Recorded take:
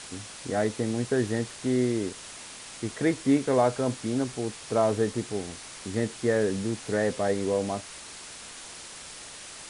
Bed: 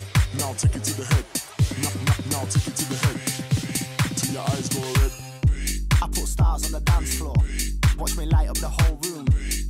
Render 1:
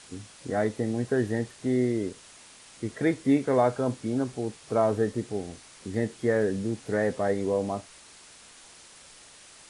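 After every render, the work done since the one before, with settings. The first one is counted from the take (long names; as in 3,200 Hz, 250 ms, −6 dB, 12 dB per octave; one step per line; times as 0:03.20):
noise reduction from a noise print 8 dB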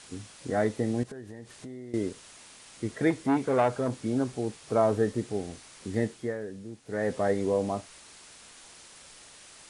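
0:01.03–0:01.94: downward compressor 8 to 1, threshold −39 dBFS
0:03.10–0:03.93: saturating transformer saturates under 820 Hz
0:06.03–0:07.17: duck −12 dB, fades 0.34 s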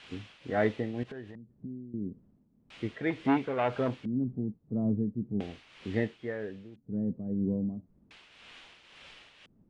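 auto-filter low-pass square 0.37 Hz 210–2,900 Hz
shaped tremolo triangle 1.9 Hz, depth 65%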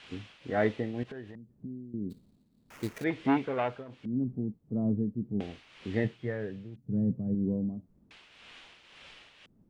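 0:02.10–0:03.04: sample-rate reduction 4,200 Hz, jitter 20%
0:03.58–0:04.14: duck −18 dB, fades 0.26 s
0:06.04–0:07.35: parametric band 130 Hz +12 dB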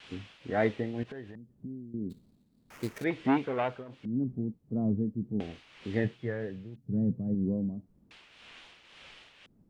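pitch vibrato 3.6 Hz 62 cents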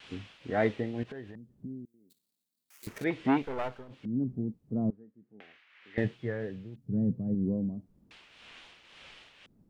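0:01.85–0:02.87: first difference
0:03.42–0:03.91: gain on one half-wave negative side −12 dB
0:04.90–0:05.98: resonant band-pass 1,800 Hz, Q 2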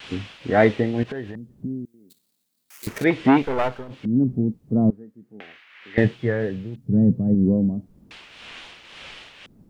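level +11.5 dB
brickwall limiter −3 dBFS, peak gain reduction 2 dB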